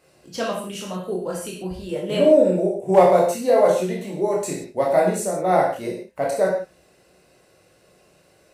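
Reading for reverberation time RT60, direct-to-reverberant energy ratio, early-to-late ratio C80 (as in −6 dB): non-exponential decay, −3.0 dB, 7.5 dB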